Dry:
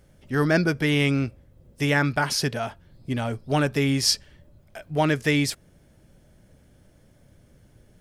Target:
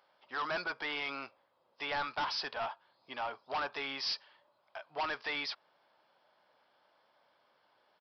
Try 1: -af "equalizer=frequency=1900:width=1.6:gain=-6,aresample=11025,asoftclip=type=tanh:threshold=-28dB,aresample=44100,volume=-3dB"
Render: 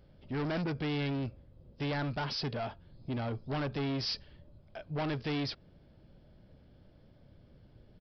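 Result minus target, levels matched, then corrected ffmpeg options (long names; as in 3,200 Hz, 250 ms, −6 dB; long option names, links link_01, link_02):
1,000 Hz band −6.0 dB
-af "highpass=frequency=970:width_type=q:width=2.9,equalizer=frequency=1900:width=1.6:gain=-6,aresample=11025,asoftclip=type=tanh:threshold=-28dB,aresample=44100,volume=-3dB"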